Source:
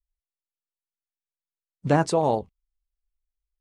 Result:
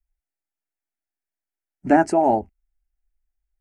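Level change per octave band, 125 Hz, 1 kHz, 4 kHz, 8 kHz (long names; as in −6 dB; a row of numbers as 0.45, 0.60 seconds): −8.5 dB, +6.0 dB, can't be measured, −2.5 dB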